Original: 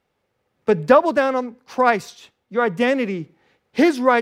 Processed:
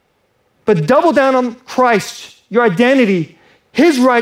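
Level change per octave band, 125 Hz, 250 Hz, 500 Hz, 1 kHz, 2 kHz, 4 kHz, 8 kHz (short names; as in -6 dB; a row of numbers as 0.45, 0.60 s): +11.5, +8.0, +6.0, +5.0, +6.0, +9.0, +11.5 dB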